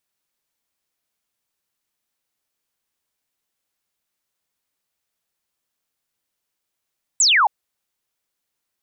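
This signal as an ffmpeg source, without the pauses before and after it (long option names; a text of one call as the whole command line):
ffmpeg -f lavfi -i "aevalsrc='0.251*clip(t/0.002,0,1)*clip((0.27-t)/0.002,0,1)*sin(2*PI*8200*0.27/log(760/8200)*(exp(log(760/8200)*t/0.27)-1))':duration=0.27:sample_rate=44100" out.wav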